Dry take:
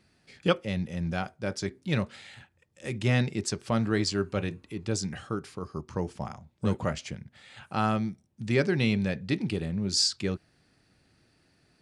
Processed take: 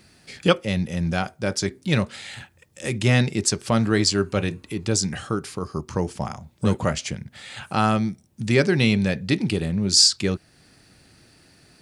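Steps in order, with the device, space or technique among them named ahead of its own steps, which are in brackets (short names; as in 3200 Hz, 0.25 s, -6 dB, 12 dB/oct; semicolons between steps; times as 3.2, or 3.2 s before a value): high shelf 5700 Hz +8.5 dB; parallel compression (in parallel at -2 dB: compressor, threshold -43 dBFS, peak gain reduction 23 dB); on the sum: gain +5.5 dB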